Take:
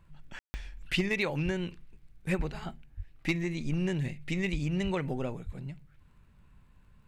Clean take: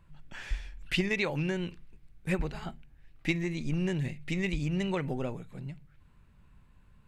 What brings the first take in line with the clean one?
clipped peaks rebuilt −18.5 dBFS
click removal
high-pass at the plosives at 0:01.44/0:02.96/0:04.83/0:05.45
ambience match 0:00.39–0:00.54

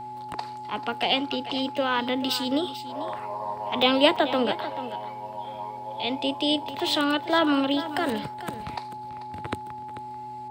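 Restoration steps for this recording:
hum removal 124.2 Hz, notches 3
notch filter 850 Hz, Q 30
repair the gap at 0:03.82/0:04.16, 4.3 ms
echo removal 440 ms −13.5 dB

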